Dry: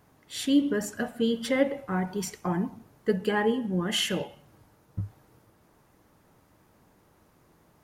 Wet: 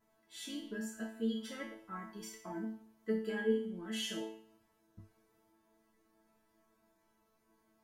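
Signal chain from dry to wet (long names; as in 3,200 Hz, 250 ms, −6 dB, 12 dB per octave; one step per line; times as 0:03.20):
pitch vibrato 0.76 Hz 9.3 cents
resonators tuned to a chord A3 fifth, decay 0.49 s
level +7 dB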